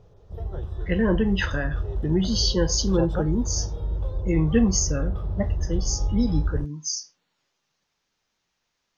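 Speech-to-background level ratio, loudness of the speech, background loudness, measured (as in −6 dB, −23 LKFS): 4.5 dB, −25.5 LKFS, −30.0 LKFS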